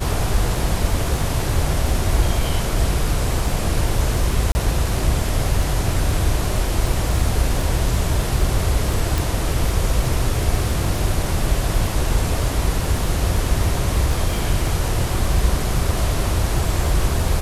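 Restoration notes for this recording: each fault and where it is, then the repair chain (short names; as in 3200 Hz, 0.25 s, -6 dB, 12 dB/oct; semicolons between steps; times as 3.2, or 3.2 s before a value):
crackle 25/s -24 dBFS
4.52–4.55 gap 30 ms
9.18 pop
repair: de-click; interpolate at 4.52, 30 ms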